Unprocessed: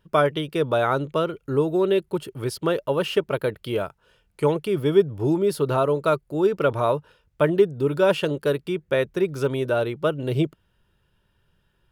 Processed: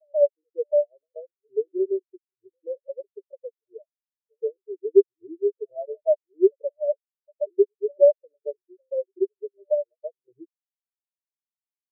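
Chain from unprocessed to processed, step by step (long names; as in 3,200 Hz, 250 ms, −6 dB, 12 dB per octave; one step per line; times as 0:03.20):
dynamic equaliser 600 Hz, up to +6 dB, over −34 dBFS, Q 3
transient designer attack +6 dB, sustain −5 dB
phaser with its sweep stopped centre 460 Hz, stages 4
on a send: backwards echo 133 ms −14 dB
on the sum: boost into a limiter +7.5 dB
every bin expanded away from the loudest bin 4 to 1
level −4 dB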